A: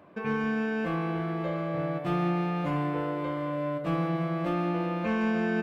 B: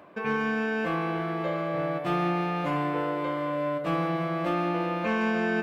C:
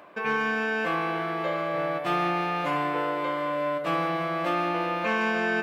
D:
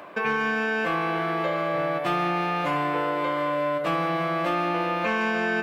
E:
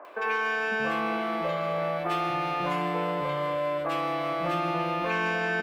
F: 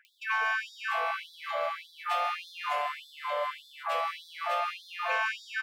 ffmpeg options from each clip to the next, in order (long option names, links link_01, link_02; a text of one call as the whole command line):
ffmpeg -i in.wav -af "lowshelf=frequency=240:gain=-10,areverse,acompressor=mode=upward:threshold=-39dB:ratio=2.5,areverse,volume=4.5dB" out.wav
ffmpeg -i in.wav -af "lowshelf=frequency=370:gain=-11.5,volume=4.5dB" out.wav
ffmpeg -i in.wav -filter_complex "[0:a]acrossover=split=120[link_01][link_02];[link_02]acompressor=threshold=-32dB:ratio=2.5[link_03];[link_01][link_03]amix=inputs=2:normalize=0,volume=7dB" out.wav
ffmpeg -i in.wav -filter_complex "[0:a]acrossover=split=320|1600[link_01][link_02][link_03];[link_03]adelay=50[link_04];[link_01]adelay=550[link_05];[link_05][link_02][link_04]amix=inputs=3:normalize=0,volume=-1.5dB" out.wav
ffmpeg -i in.wav -af "afftfilt=real='re*gte(b*sr/1024,460*pow(3400/460,0.5+0.5*sin(2*PI*1.7*pts/sr)))':imag='im*gte(b*sr/1024,460*pow(3400/460,0.5+0.5*sin(2*PI*1.7*pts/sr)))':win_size=1024:overlap=0.75" out.wav